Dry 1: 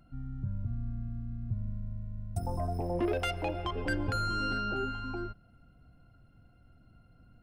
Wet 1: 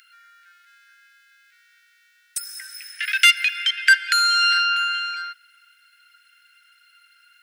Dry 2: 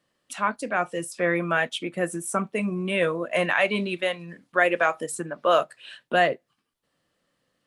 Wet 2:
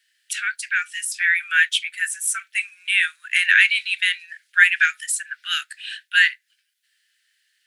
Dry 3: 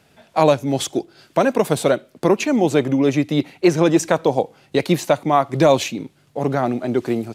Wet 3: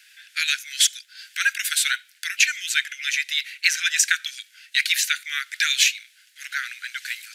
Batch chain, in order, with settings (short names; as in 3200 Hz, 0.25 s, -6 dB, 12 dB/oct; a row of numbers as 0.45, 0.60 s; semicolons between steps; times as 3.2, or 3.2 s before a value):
steep high-pass 1500 Hz 96 dB/oct; normalise peaks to -1.5 dBFS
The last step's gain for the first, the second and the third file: +23.5, +10.5, +8.5 dB